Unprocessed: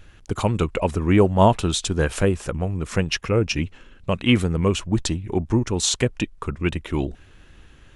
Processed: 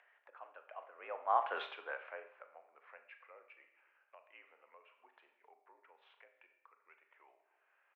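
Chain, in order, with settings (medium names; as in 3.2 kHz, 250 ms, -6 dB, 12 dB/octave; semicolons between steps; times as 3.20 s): Doppler pass-by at 1.60 s, 27 m/s, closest 1.6 m; mistuned SSB +64 Hz 590–2300 Hz; speakerphone echo 270 ms, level -25 dB; Schroeder reverb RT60 0.52 s, combs from 27 ms, DRR 7.5 dB; upward compressor, threshold -55 dBFS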